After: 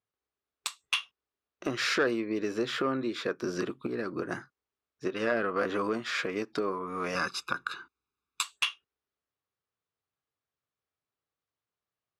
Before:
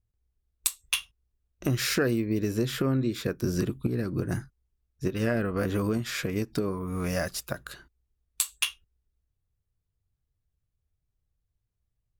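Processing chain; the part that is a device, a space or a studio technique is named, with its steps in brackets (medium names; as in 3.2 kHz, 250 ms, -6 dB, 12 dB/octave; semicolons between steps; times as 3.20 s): intercom (band-pass 370–4400 Hz; peaking EQ 1.2 kHz +5.5 dB 0.59 oct; saturation -18 dBFS, distortion -20 dB); 7.15–8.43 s: comb 0.8 ms, depth 98%; trim +2 dB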